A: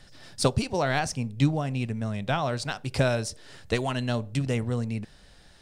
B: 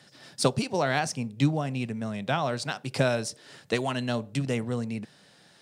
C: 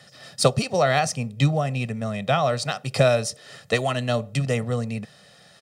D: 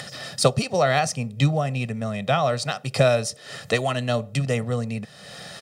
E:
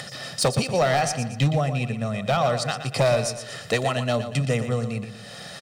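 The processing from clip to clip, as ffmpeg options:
-af "highpass=f=130:w=0.5412,highpass=f=130:w=1.3066"
-af "aecho=1:1:1.6:0.62,volume=4dB"
-af "acompressor=mode=upward:threshold=-26dB:ratio=2.5"
-filter_complex "[0:a]asoftclip=type=hard:threshold=-15dB,asplit=2[a][b];[b]aecho=0:1:118|236|354|472|590:0.316|0.136|0.0585|0.0251|0.0108[c];[a][c]amix=inputs=2:normalize=0"

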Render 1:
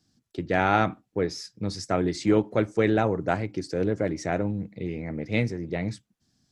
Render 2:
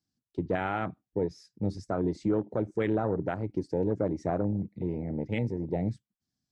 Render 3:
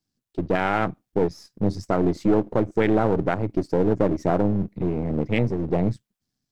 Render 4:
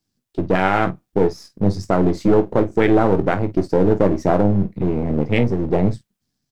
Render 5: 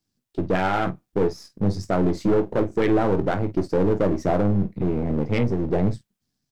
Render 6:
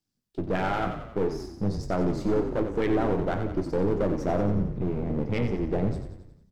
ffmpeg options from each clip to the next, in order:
-af "afwtdn=0.0316,alimiter=limit=-18dB:level=0:latency=1:release=151"
-af "aeval=exprs='if(lt(val(0),0),0.447*val(0),val(0))':c=same,dynaudnorm=f=140:g=7:m=4dB,volume=6.5dB"
-af "aecho=1:1:21|49:0.316|0.188,volume=4.5dB"
-af "asoftclip=type=tanh:threshold=-9dB,volume=-2.5dB"
-filter_complex "[0:a]asplit=8[a][b][c][d][e][f][g][h];[b]adelay=90,afreqshift=-31,volume=-8dB[i];[c]adelay=180,afreqshift=-62,volume=-13.2dB[j];[d]adelay=270,afreqshift=-93,volume=-18.4dB[k];[e]adelay=360,afreqshift=-124,volume=-23.6dB[l];[f]adelay=450,afreqshift=-155,volume=-28.8dB[m];[g]adelay=540,afreqshift=-186,volume=-34dB[n];[h]adelay=630,afreqshift=-217,volume=-39.2dB[o];[a][i][j][k][l][m][n][o]amix=inputs=8:normalize=0,volume=-5.5dB"

